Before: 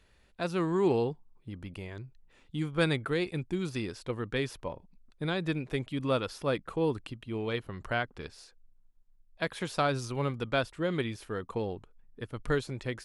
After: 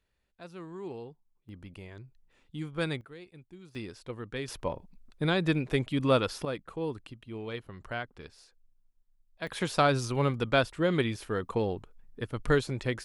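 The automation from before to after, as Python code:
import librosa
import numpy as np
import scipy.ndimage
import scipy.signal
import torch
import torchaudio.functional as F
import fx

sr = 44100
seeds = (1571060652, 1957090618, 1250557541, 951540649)

y = fx.gain(x, sr, db=fx.steps((0.0, -14.0), (1.49, -4.5), (3.01, -17.5), (3.75, -5.0), (4.48, 4.5), (6.45, -5.0), (9.47, 4.0)))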